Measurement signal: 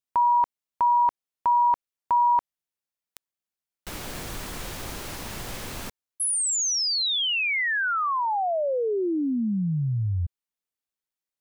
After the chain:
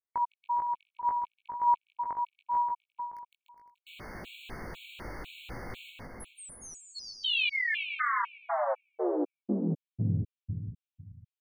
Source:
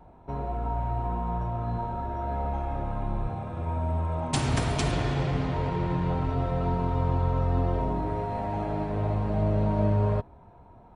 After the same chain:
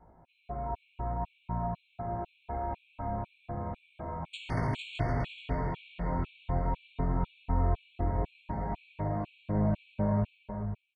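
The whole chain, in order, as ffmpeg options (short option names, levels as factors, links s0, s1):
-filter_complex "[0:a]highshelf=f=4300:t=q:w=1.5:g=-12,asplit=2[s0][s1];[s1]aecho=0:1:160|296|411.6|509.9|593.4:0.631|0.398|0.251|0.158|0.1[s2];[s0][s2]amix=inputs=2:normalize=0,flanger=delay=18:depth=2.1:speed=0.7,asplit=2[s3][s4];[s4]adelay=429,lowpass=f=1200:p=1,volume=0.531,asplit=2[s5][s6];[s6]adelay=429,lowpass=f=1200:p=1,volume=0.26,asplit=2[s7][s8];[s8]adelay=429,lowpass=f=1200:p=1,volume=0.26[s9];[s5][s7][s9]amix=inputs=3:normalize=0[s10];[s3][s10]amix=inputs=2:normalize=0,afftfilt=real='re*gt(sin(2*PI*2*pts/sr)*(1-2*mod(floor(b*sr/1024/2200),2)),0)':imag='im*gt(sin(2*PI*2*pts/sr)*(1-2*mod(floor(b*sr/1024/2200),2)),0)':win_size=1024:overlap=0.75,volume=0.631"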